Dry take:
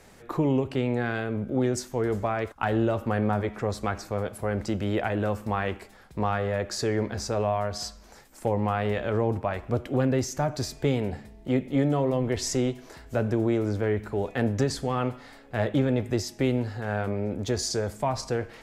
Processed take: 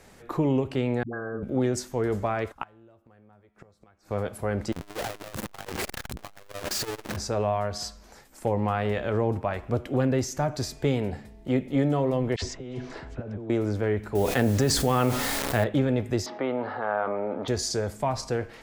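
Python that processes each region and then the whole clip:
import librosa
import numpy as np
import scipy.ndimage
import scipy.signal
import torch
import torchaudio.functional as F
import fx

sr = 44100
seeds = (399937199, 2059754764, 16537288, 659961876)

y = fx.chain(x, sr, fx.cheby_ripple(hz=1700.0, ripple_db=9),
    fx.dispersion(late='highs', ms=100.0, hz=370.0),
    fx.band_squash(depth_pct=40), at=(1.03, 1.43))
y = fx.chain(y, sr, fx.gate_flip(shuts_db=-25.0, range_db=-27),
    fx.comb_fb(f0_hz=170.0, decay_s=0.66, harmonics='all', damping=0.0, mix_pct=40), at=(2.62, 4.11))
y = fx.chain(y, sr, fx.clip_1bit(),
    fx.transformer_sat(knee_hz=130.0), at=(4.72, 7.17))
y = fx.chain(y, sr, fx.over_compress(threshold_db=-34.0, ratio=-1.0),
    fx.air_absorb(metres=120.0),
    fx.dispersion(late='lows', ms=62.0, hz=1000.0), at=(12.36, 13.5))
y = fx.chain(y, sr, fx.quant_dither(seeds[0], bits=8, dither='none'),
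    fx.high_shelf(hz=6700.0, db=6.0),
    fx.env_flatten(amount_pct=70), at=(14.15, 15.64))
y = fx.chain(y, sr, fx.cabinet(low_hz=360.0, low_slope=12, high_hz=2900.0, hz=(370.0, 620.0, 880.0, 1200.0, 1800.0, 2600.0), db=(-4, 4, 6, 9, -3, -8)),
    fx.env_flatten(amount_pct=50), at=(16.26, 17.48))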